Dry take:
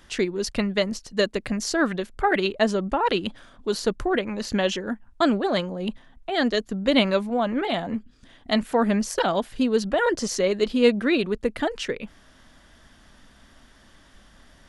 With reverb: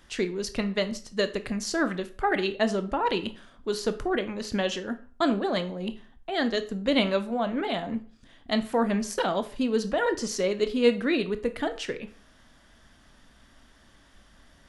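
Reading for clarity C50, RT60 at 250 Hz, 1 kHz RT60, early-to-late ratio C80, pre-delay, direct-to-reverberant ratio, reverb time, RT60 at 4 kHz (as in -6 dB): 15.0 dB, 0.40 s, 0.45 s, 19.5 dB, 17 ms, 10.0 dB, 0.45 s, 0.35 s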